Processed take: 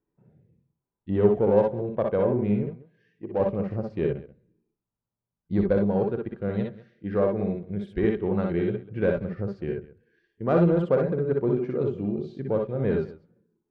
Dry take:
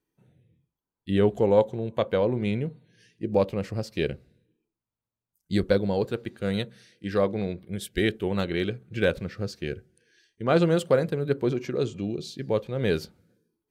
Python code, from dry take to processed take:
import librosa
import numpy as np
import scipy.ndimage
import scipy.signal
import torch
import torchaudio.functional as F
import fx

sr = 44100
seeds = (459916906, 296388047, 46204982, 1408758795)

p1 = scipy.signal.sosfilt(scipy.signal.butter(2, 1200.0, 'lowpass', fs=sr, output='sos'), x)
p2 = 10.0 ** (-22.5 / 20.0) * np.tanh(p1 / 10.0 ** (-22.5 / 20.0))
p3 = p1 + (p2 * librosa.db_to_amplitude(-8.0))
p4 = fx.low_shelf(p3, sr, hz=360.0, db=-10.5, at=(2.63, 3.4))
p5 = fx.echo_multitap(p4, sr, ms=(59, 64, 194), db=(-4.0, -7.0, -18.5))
y = p5 * librosa.db_to_amplitude(-2.5)